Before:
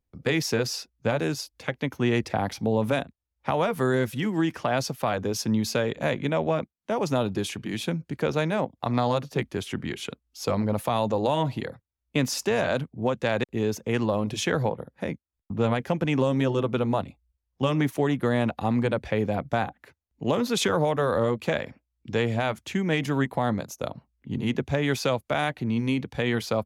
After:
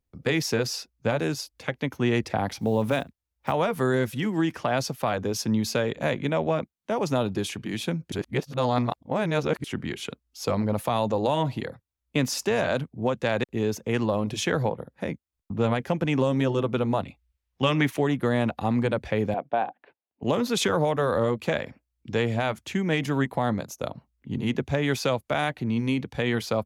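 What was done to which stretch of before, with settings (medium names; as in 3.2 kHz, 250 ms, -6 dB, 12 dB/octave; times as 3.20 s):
2.59–3.54 s: block-companded coder 7-bit
8.12–9.64 s: reverse
17.04–17.99 s: peaking EQ 2.4 kHz +7.5 dB 1.9 oct
19.34–20.23 s: cabinet simulation 340–2900 Hz, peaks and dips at 730 Hz +4 dB, 1.3 kHz -7 dB, 2 kHz -9 dB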